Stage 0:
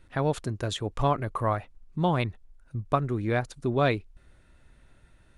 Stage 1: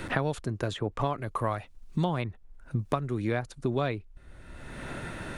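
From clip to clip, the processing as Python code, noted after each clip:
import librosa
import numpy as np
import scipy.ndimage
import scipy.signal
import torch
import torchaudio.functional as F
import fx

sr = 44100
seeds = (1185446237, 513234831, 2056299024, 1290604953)

y = fx.band_squash(x, sr, depth_pct=100)
y = F.gain(torch.from_numpy(y), -3.5).numpy()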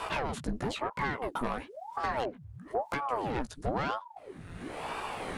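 y = 10.0 ** (-27.5 / 20.0) * np.tanh(x / 10.0 ** (-27.5 / 20.0))
y = fx.doubler(y, sr, ms=16.0, db=-4.5)
y = fx.ring_lfo(y, sr, carrier_hz=540.0, swing_pct=85, hz=1.0)
y = F.gain(torch.from_numpy(y), 2.5).numpy()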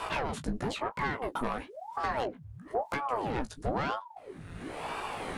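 y = fx.doubler(x, sr, ms=19.0, db=-12.0)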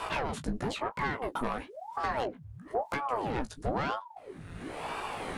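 y = x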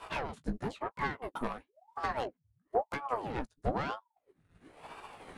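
y = fx.upward_expand(x, sr, threshold_db=-50.0, expansion=2.5)
y = F.gain(torch.from_numpy(y), 3.0).numpy()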